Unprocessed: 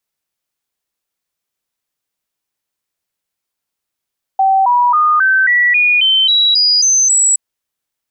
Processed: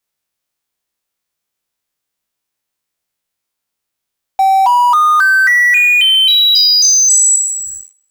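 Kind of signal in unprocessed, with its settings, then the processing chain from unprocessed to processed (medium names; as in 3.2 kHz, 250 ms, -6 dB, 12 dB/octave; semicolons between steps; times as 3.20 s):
stepped sine 772 Hz up, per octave 3, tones 11, 0.27 s, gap 0.00 s -8 dBFS
spectral sustain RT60 0.83 s; in parallel at -10.5 dB: fuzz box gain 42 dB, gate -48 dBFS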